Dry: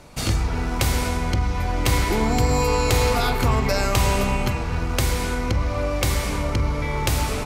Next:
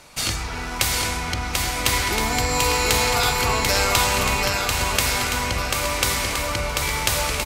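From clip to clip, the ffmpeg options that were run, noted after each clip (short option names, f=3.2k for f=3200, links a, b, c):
-af "tiltshelf=f=770:g=-7,aecho=1:1:740|1369|1904|2358|2744:0.631|0.398|0.251|0.158|0.1,volume=-1.5dB"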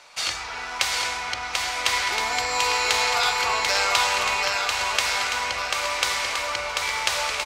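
-filter_complex "[0:a]acrossover=split=530 7200:gain=0.1 1 0.158[a][b][c];[a][b][c]amix=inputs=3:normalize=0"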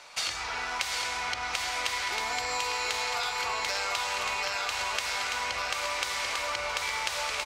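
-af "acompressor=threshold=-28dB:ratio=6"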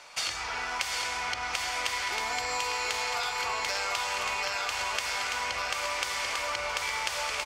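-af "bandreject=f=3.9k:w=14"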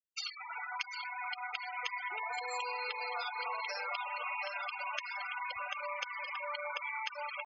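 -af "afftfilt=real='re*gte(hypot(re,im),0.0562)':imag='im*gte(hypot(re,im),0.0562)':win_size=1024:overlap=0.75,areverse,acompressor=mode=upward:threshold=-42dB:ratio=2.5,areverse,volume=-4.5dB"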